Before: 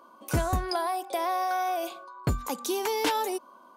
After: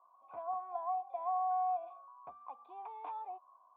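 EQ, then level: vocal tract filter a; tilt +4.5 dB/oct; low shelf 83 Hz -10.5 dB; -2.0 dB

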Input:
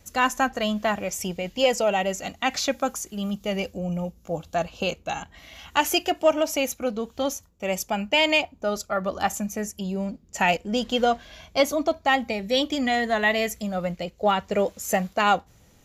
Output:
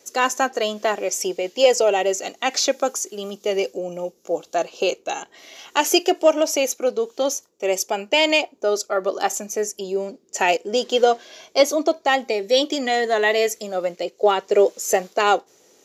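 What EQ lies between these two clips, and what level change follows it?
resonant high-pass 390 Hz, resonance Q 3.8; bell 5800 Hz +8.5 dB 1.1 oct; 0.0 dB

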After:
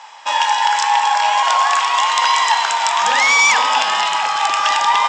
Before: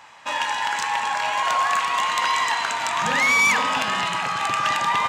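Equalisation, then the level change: speaker cabinet 450–8000 Hz, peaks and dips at 860 Hz +9 dB, 3300 Hz +6 dB, 5300 Hz +9 dB, 7500 Hz +6 dB; +3.5 dB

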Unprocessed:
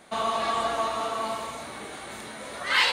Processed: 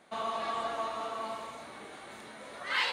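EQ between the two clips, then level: low shelf 86 Hz -10.5 dB; high shelf 5400 Hz -7.5 dB; -7.0 dB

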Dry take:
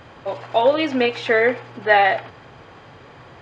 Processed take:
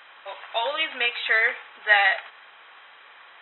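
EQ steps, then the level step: HPF 1400 Hz 12 dB/oct; brick-wall FIR low-pass 4000 Hz; +2.0 dB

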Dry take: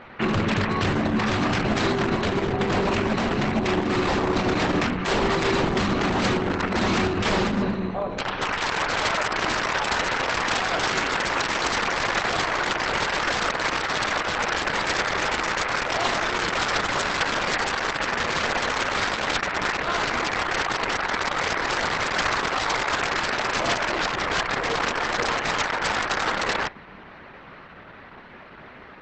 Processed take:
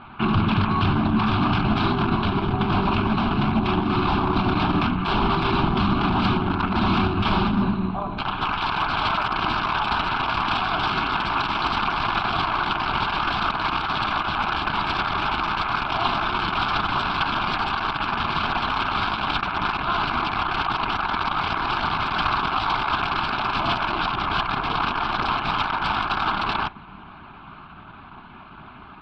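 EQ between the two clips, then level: air absorption 87 m; high shelf 5400 Hz -9 dB; fixed phaser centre 1900 Hz, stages 6; +5.5 dB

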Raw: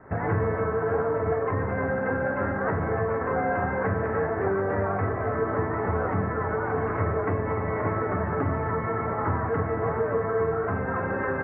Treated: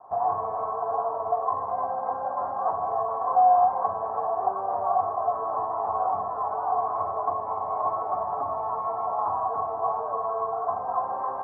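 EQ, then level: vocal tract filter a; bell 950 Hz +8.5 dB 2.4 oct; notch 2000 Hz, Q 13; +5.0 dB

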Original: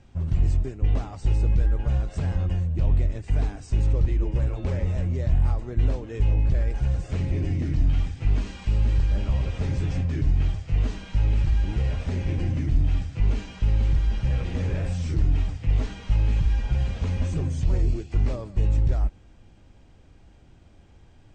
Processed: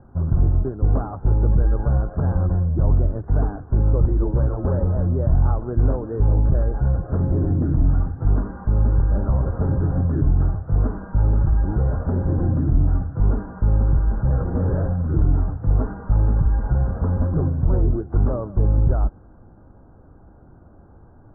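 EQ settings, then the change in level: steep low-pass 1500 Hz 72 dB/oct; low shelf 91 Hz -7 dB; +8.5 dB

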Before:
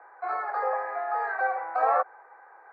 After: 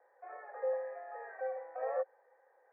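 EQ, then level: vocal tract filter e; low shelf 280 Hz +7.5 dB; bell 970 Hz +6 dB 1.1 oct; -5.0 dB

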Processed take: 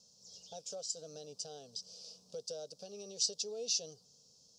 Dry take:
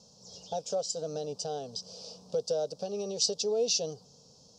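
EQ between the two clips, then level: pre-emphasis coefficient 0.9; bell 890 Hz -6 dB 0.83 oct; high shelf 2700 Hz -9.5 dB; +6.0 dB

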